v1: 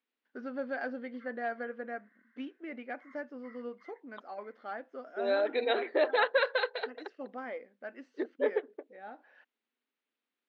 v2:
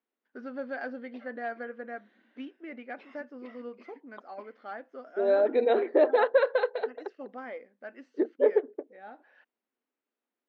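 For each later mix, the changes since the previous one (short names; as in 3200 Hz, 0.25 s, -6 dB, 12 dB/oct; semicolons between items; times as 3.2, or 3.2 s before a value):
second voice: add tilt shelf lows +10 dB, about 1200 Hz; background: remove brick-wall FIR band-pass 990–2200 Hz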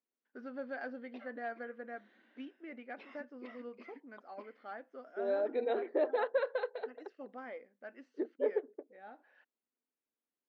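first voice -5.5 dB; second voice -9.5 dB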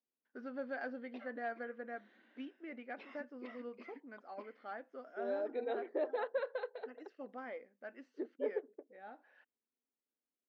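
second voice -5.0 dB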